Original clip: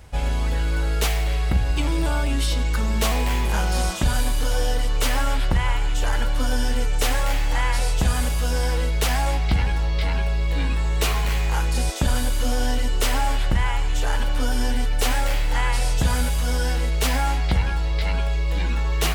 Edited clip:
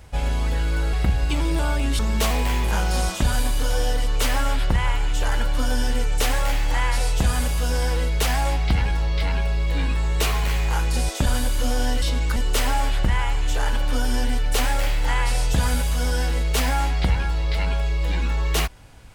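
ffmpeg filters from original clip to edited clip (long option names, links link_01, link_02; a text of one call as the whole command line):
ffmpeg -i in.wav -filter_complex "[0:a]asplit=5[link_01][link_02][link_03][link_04][link_05];[link_01]atrim=end=0.932[link_06];[link_02]atrim=start=1.398:end=2.462[link_07];[link_03]atrim=start=2.798:end=12.832[link_08];[link_04]atrim=start=2.458:end=2.802[link_09];[link_05]atrim=start=12.828[link_10];[link_06][link_07]acrossfade=duration=0.004:curve1=hsin:curve2=hsin[link_11];[link_11][link_08]acrossfade=duration=0.004:curve1=hsin:curve2=hsin[link_12];[link_12][link_09]acrossfade=duration=0.004:curve1=hsin:curve2=hsin[link_13];[link_13][link_10]acrossfade=duration=0.004:curve1=hsin:curve2=hsin" out.wav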